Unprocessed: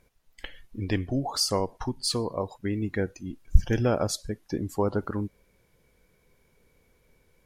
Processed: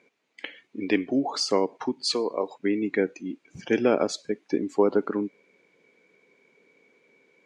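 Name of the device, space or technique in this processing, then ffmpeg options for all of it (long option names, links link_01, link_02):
television speaker: -filter_complex "[0:a]highpass=frequency=200:width=0.5412,highpass=frequency=200:width=1.3066,equalizer=frequency=290:width_type=q:width=4:gain=5,equalizer=frequency=420:width_type=q:width=4:gain=6,equalizer=frequency=2300:width_type=q:width=4:gain=9,equalizer=frequency=5400:width_type=q:width=4:gain=-5,lowpass=frequency=6700:width=0.5412,lowpass=frequency=6700:width=1.3066,asettb=1/sr,asplit=3[link_01][link_02][link_03];[link_01]atrim=end=2.054[link_04];[link_02]atrim=start=2.05:end=2.5,asetpts=PTS-STARTPTS,afade=type=in:duration=0.004:curve=qsin,afade=type=out:start_time=0.446:duration=0.004:curve=qsin,bass=frequency=250:gain=-9,treble=frequency=4000:gain=4[link_05];[link_03]atrim=start=2.496[link_06];[link_04][link_05]acrossfade=duration=0.004:curve1=hsin:curve2=qsin[link_07];[link_07][link_06]acrossfade=duration=0.004:curve1=qsin:curve2=hsin,volume=1.5dB"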